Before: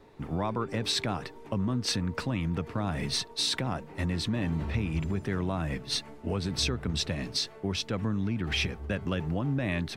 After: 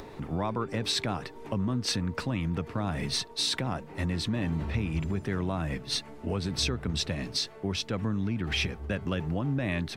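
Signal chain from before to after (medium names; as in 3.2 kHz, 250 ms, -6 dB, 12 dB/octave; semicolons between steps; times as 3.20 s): upward compressor, threshold -34 dBFS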